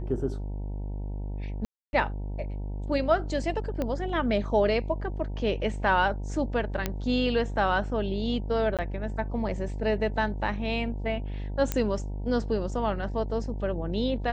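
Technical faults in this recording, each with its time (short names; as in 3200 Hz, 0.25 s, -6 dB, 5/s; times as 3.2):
buzz 50 Hz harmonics 19 -33 dBFS
1.65–1.93 gap 0.281 s
3.82 pop -17 dBFS
6.86 pop -12 dBFS
8.77–8.79 gap 17 ms
11.72 pop -11 dBFS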